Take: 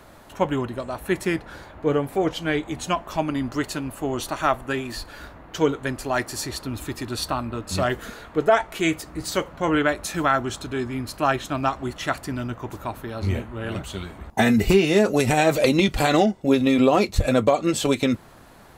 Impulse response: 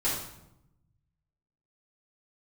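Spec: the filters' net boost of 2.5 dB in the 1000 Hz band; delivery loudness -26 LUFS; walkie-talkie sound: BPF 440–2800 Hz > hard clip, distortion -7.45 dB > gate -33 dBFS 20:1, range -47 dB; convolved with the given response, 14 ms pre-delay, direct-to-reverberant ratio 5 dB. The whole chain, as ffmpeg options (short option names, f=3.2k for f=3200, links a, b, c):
-filter_complex "[0:a]equalizer=f=1k:t=o:g=4,asplit=2[a][b];[1:a]atrim=start_sample=2205,adelay=14[c];[b][c]afir=irnorm=-1:irlink=0,volume=-14dB[d];[a][d]amix=inputs=2:normalize=0,highpass=440,lowpass=2.8k,asoftclip=type=hard:threshold=-19.5dB,agate=range=-47dB:threshold=-33dB:ratio=20,volume=1dB"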